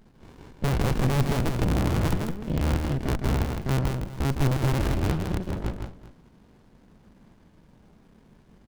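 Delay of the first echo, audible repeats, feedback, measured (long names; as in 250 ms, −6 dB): 160 ms, 3, repeats not evenly spaced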